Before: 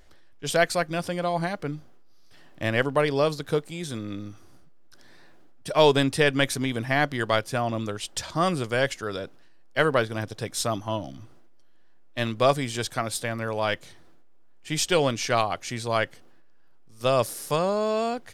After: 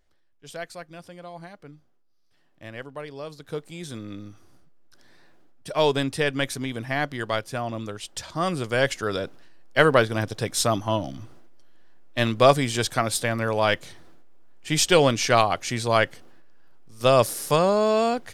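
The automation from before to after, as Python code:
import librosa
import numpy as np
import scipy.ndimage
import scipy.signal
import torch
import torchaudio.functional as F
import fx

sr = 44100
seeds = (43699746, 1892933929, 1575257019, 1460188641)

y = fx.gain(x, sr, db=fx.line((3.23, -14.0), (3.74, -3.0), (8.33, -3.0), (9.05, 4.5)))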